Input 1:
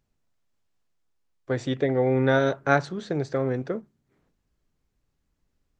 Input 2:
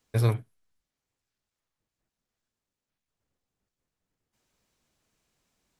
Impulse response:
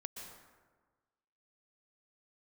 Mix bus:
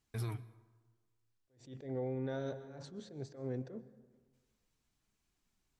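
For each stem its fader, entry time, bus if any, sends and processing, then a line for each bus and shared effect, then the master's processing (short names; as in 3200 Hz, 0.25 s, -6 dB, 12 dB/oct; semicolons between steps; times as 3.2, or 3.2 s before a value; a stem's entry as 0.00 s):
-11.0 dB, 0.00 s, send -8.5 dB, bell 1700 Hz -8.5 dB 2.3 oct; notch 1300 Hz, Q 17; attack slew limiter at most 130 dB/s
-4.0 dB, 0.00 s, send -17.5 dB, bell 530 Hz -15 dB 0.33 oct; flange 0.75 Hz, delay 2.4 ms, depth 8.2 ms, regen +52%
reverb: on, RT60 1.4 s, pre-delay 0.112 s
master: limiter -30 dBFS, peak gain reduction 9 dB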